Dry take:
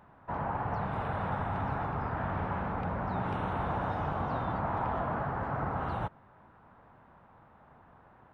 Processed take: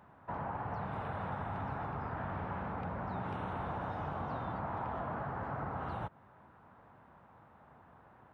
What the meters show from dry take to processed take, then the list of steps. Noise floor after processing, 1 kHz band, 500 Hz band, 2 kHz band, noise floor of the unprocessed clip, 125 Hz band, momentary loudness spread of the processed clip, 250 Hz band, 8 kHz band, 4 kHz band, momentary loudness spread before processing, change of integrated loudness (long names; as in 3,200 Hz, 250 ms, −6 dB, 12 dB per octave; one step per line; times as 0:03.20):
−61 dBFS, −5.5 dB, −5.5 dB, −5.5 dB, −59 dBFS, −6.0 dB, 1 LU, −5.5 dB, can't be measured, −5.5 dB, 2 LU, −6.0 dB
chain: high-pass filter 55 Hz
downward compressor 2 to 1, threshold −37 dBFS, peak gain reduction 5.5 dB
level −1.5 dB